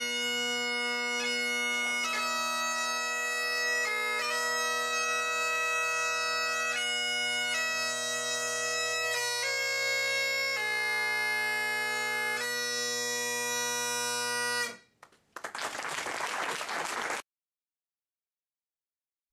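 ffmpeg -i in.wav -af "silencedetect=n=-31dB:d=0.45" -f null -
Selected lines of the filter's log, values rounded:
silence_start: 14.70
silence_end: 15.37 | silence_duration: 0.66
silence_start: 17.20
silence_end: 19.33 | silence_duration: 2.13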